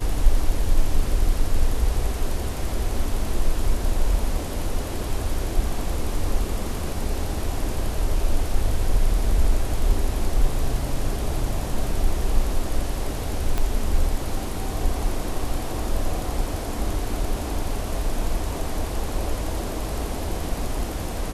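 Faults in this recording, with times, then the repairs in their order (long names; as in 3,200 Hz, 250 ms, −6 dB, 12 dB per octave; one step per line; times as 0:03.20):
0:13.58: click −11 dBFS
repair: click removal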